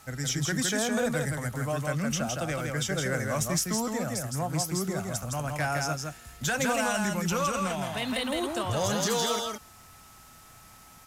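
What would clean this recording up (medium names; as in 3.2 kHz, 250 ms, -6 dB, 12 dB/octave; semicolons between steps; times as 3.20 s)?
band-stop 1.3 kHz, Q 30; expander -44 dBFS, range -21 dB; inverse comb 163 ms -3.5 dB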